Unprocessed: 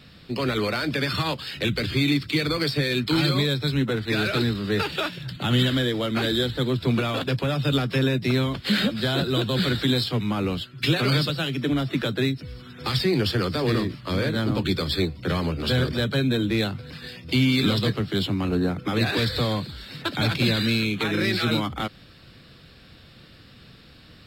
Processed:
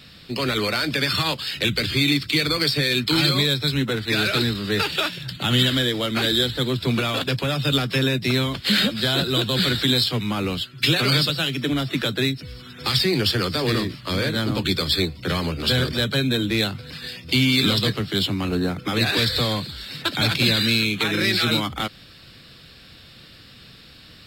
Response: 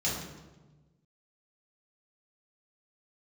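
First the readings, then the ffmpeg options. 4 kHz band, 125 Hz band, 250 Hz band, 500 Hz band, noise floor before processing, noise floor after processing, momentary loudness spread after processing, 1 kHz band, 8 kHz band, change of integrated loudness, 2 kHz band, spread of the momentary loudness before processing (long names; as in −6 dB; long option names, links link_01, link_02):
+6.5 dB, 0.0 dB, 0.0 dB, +0.5 dB, −49 dBFS, −47 dBFS, 7 LU, +2.0 dB, +8.0 dB, +3.0 dB, +4.0 dB, 6 LU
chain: -af "highshelf=frequency=2100:gain=8.5"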